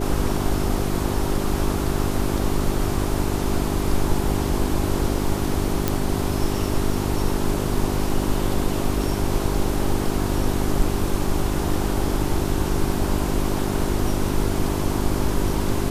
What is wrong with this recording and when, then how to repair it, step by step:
mains hum 50 Hz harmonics 8 −26 dBFS
0:05.88: click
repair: click removal
hum removal 50 Hz, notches 8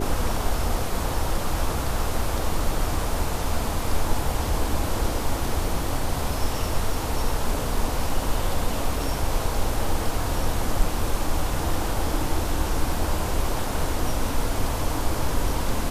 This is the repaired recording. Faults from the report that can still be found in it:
none of them is left

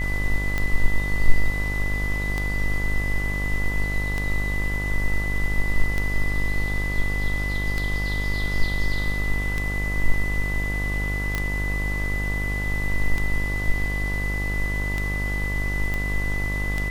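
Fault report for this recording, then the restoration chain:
mains buzz 50 Hz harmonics 24 −27 dBFS
scratch tick 33 1/3 rpm −12 dBFS
whistle 2,000 Hz −28 dBFS
0:11.35: click −11 dBFS
0:15.94: click −15 dBFS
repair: click removal
notch filter 2,000 Hz, Q 30
hum removal 50 Hz, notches 24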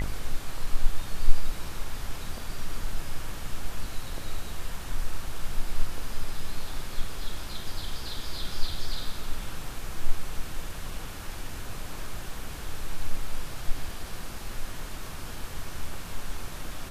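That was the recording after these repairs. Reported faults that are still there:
none of them is left

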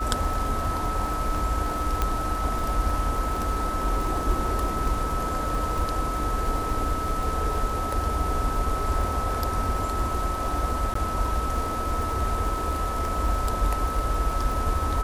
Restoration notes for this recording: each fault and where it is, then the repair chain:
surface crackle 47 per second −30 dBFS
whistle 1,300 Hz −29 dBFS
0:02.02: click −10 dBFS
0:10.94–0:10.95: drop-out 14 ms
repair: click removal
notch filter 1,300 Hz, Q 30
repair the gap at 0:10.94, 14 ms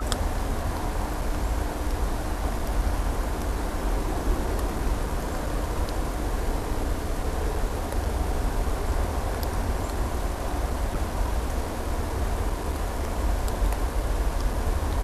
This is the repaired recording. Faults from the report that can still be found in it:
0:02.02: click

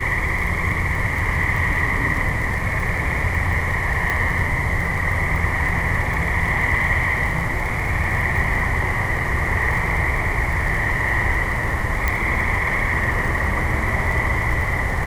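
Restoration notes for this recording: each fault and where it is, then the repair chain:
surface crackle 25 per second −25 dBFS
0:04.10: click −8 dBFS
0:12.08: click −6 dBFS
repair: click removal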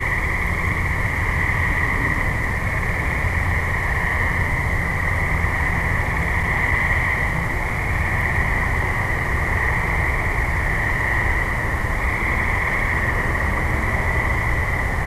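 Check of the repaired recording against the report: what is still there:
none of them is left

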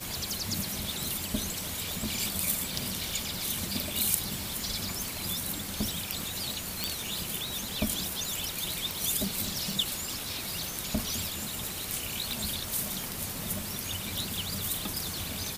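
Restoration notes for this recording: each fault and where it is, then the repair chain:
surface crackle 45 per second −37 dBFS
0:06.84: click
0:12.31: click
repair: click removal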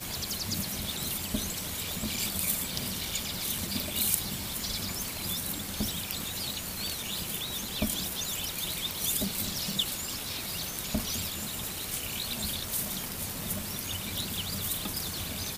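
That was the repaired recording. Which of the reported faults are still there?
none of them is left

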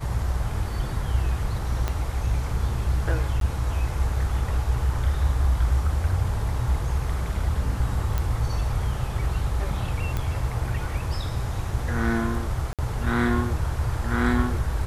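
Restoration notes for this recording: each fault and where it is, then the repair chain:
0:01.88: click −12 dBFS
0:03.40–0:03.41: drop-out 12 ms
0:08.18: click −13 dBFS
0:10.17: click −14 dBFS
0:12.73–0:12.79: drop-out 57 ms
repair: click removal
repair the gap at 0:03.40, 12 ms
repair the gap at 0:12.73, 57 ms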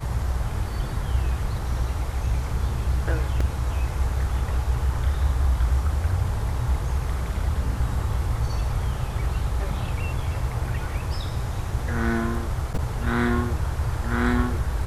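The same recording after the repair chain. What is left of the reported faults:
0:01.88: click

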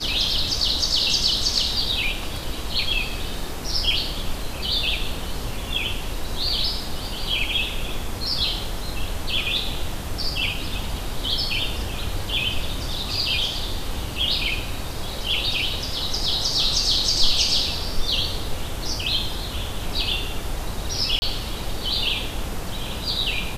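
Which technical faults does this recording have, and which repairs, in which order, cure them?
0:21.19–0:21.22: drop-out 30 ms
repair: repair the gap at 0:21.19, 30 ms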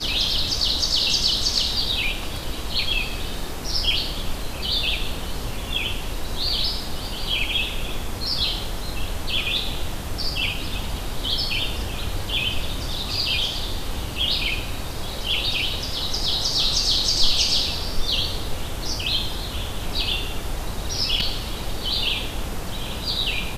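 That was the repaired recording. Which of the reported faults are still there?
none of them is left

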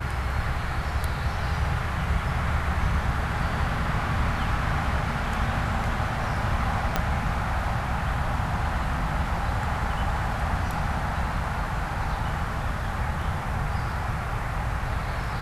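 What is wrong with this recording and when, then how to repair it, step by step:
0:06.96: click −8 dBFS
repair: click removal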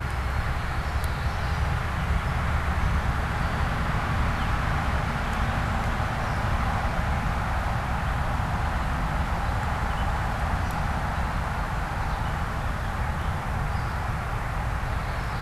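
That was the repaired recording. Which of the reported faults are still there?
0:06.96: click

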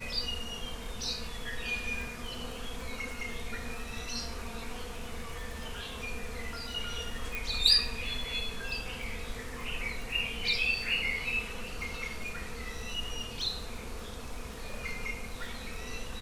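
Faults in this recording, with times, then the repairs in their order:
surface crackle 22 per second −38 dBFS
0:07.35: click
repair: click removal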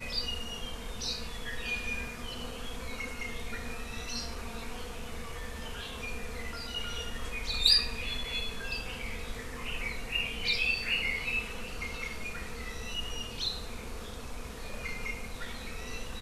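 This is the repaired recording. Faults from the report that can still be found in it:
none of them is left

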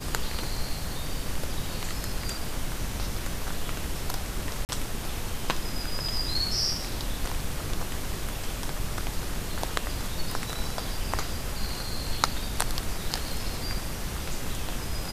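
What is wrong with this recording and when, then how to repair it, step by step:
0:04.65–0:04.69: drop-out 39 ms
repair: repair the gap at 0:04.65, 39 ms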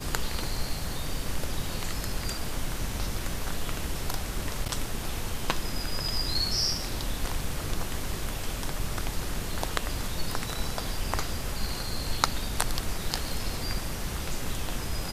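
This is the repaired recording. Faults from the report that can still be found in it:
none of them is left

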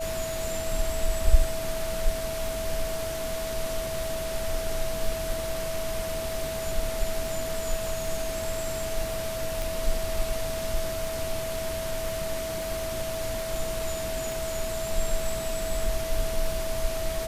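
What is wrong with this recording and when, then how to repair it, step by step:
surface crackle 23 per second −33 dBFS
whistle 650 Hz −31 dBFS
0:09.62: click
0:14.32: click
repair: click removal
notch filter 650 Hz, Q 30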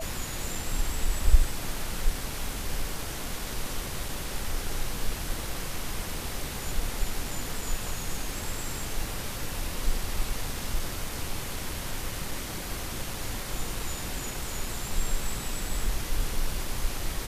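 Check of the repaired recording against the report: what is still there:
none of them is left

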